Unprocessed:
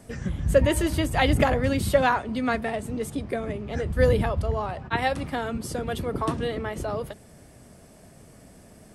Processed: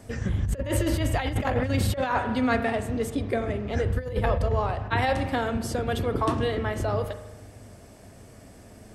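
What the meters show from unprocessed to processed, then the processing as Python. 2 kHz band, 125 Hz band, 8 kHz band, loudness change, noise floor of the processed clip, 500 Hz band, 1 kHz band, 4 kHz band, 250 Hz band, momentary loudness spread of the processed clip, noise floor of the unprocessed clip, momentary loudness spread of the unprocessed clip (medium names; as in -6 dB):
-1.5 dB, +1.0 dB, -1.5 dB, -1.0 dB, -49 dBFS, -2.5 dB, -1.0 dB, -2.0 dB, -0.5 dB, 4 LU, -51 dBFS, 10 LU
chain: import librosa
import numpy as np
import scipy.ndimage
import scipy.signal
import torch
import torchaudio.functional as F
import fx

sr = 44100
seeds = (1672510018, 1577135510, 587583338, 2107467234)

y = fx.graphic_eq_31(x, sr, hz=(100, 160, 10000), db=(7, -8, -7))
y = fx.rev_spring(y, sr, rt60_s=1.1, pass_ms=(39,), chirp_ms=50, drr_db=9.5)
y = fx.over_compress(y, sr, threshold_db=-23.0, ratio=-0.5)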